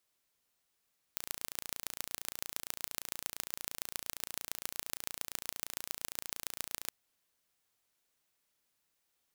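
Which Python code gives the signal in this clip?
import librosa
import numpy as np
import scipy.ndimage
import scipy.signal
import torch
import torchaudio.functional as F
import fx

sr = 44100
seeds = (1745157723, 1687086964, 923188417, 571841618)

y = fx.impulse_train(sr, length_s=5.73, per_s=28.7, accent_every=4, level_db=-7.5)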